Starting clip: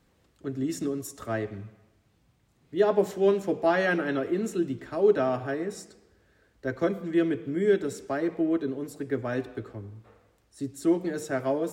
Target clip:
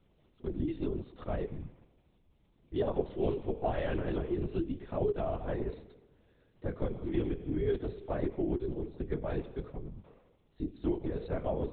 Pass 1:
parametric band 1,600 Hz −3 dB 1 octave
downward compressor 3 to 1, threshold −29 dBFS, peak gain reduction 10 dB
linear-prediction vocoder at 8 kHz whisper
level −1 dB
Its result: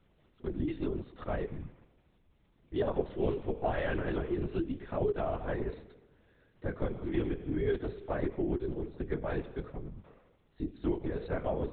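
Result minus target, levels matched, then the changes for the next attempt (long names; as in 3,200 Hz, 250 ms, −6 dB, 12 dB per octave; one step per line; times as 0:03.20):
2,000 Hz band +5.5 dB
change: parametric band 1,600 Hz −9.5 dB 1 octave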